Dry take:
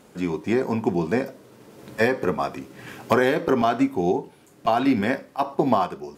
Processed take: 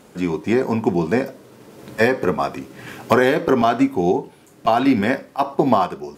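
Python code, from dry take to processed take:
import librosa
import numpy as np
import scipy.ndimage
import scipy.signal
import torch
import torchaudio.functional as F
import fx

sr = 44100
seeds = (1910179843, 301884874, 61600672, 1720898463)

y = x * 10.0 ** (4.0 / 20.0)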